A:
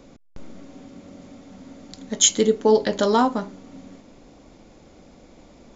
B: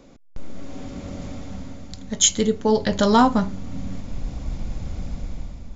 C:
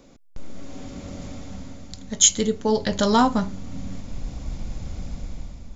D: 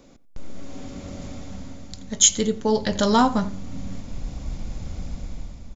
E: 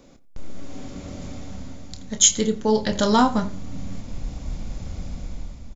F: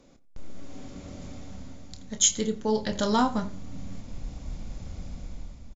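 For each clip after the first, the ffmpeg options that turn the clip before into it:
-af "asubboost=boost=12:cutoff=110,dynaudnorm=f=140:g=9:m=3.55,volume=0.841"
-af "highshelf=f=4700:g=6.5,volume=0.75"
-filter_complex "[0:a]asplit=2[s0][s1];[s1]adelay=88,lowpass=f=2500:p=1,volume=0.141,asplit=2[s2][s3];[s3]adelay=88,lowpass=f=2500:p=1,volume=0.22[s4];[s0][s2][s4]amix=inputs=3:normalize=0"
-filter_complex "[0:a]asplit=2[s0][s1];[s1]adelay=28,volume=0.282[s2];[s0][s2]amix=inputs=2:normalize=0"
-af "aresample=22050,aresample=44100,volume=0.501"

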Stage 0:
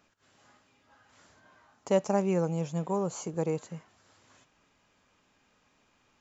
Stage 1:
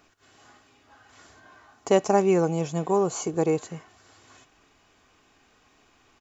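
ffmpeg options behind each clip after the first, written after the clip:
-af "aecho=1:1:2.7:0.43,volume=2.24"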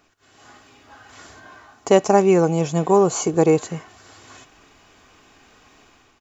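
-af "dynaudnorm=f=170:g=5:m=2.82"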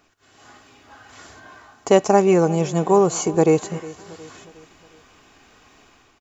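-af "aecho=1:1:361|722|1083|1444:0.112|0.0539|0.0259|0.0124"

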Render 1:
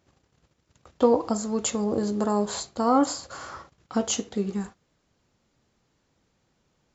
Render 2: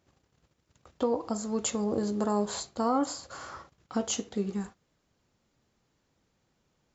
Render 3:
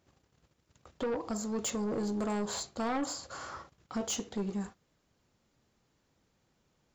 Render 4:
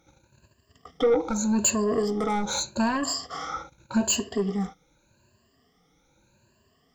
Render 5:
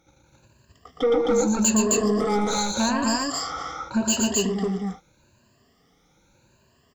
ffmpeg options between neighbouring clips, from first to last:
-af "alimiter=limit=0.237:level=0:latency=1:release=395,volume=0.668"
-af "asoftclip=type=tanh:threshold=0.0398"
-af "afftfilt=real='re*pow(10,20/40*sin(2*PI*(1.4*log(max(b,1)*sr/1024/100)/log(2)-(0.83)*(pts-256)/sr)))':imag='im*pow(10,20/40*sin(2*PI*(1.4*log(max(b,1)*sr/1024/100)/log(2)-(0.83)*(pts-256)/sr)))':win_size=1024:overlap=0.75,volume=1.78"
-af "aecho=1:1:116.6|262.4:0.631|0.891"

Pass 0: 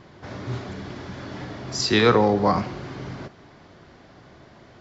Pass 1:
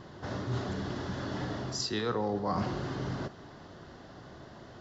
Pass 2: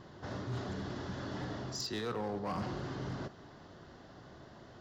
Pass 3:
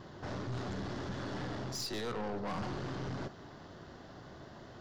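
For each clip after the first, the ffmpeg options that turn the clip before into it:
-af "equalizer=f=2300:w=5.6:g=-11.5,areverse,acompressor=threshold=0.0398:ratio=10,areverse"
-af "volume=23.7,asoftclip=hard,volume=0.0422,volume=0.596"
-af "aeval=exprs='(tanh(89.1*val(0)+0.45)-tanh(0.45))/89.1':c=same,volume=1.68"

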